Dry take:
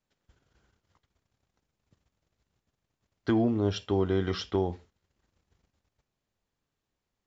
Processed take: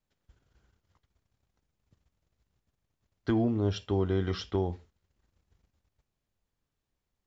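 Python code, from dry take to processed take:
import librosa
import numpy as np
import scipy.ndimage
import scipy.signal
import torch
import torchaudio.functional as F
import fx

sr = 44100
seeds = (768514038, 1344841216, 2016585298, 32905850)

y = fx.low_shelf(x, sr, hz=95.0, db=9.0)
y = F.gain(torch.from_numpy(y), -3.0).numpy()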